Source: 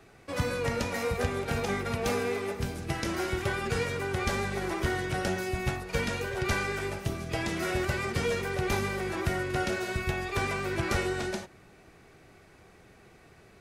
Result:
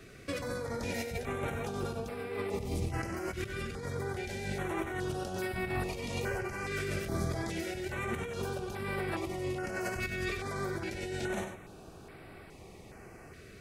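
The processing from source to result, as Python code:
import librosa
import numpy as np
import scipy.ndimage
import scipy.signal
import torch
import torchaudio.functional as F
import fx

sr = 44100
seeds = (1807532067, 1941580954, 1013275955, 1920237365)

y = fx.low_shelf(x, sr, hz=260.0, db=4.5, at=(1.92, 4.07))
y = fx.over_compress(y, sr, threshold_db=-36.0, ratio=-1.0)
y = y + 10.0 ** (-8.5 / 20.0) * np.pad(y, (int(95 * sr / 1000.0), 0))[:len(y)]
y = fx.filter_held_notch(y, sr, hz=2.4, low_hz=870.0, high_hz=6400.0)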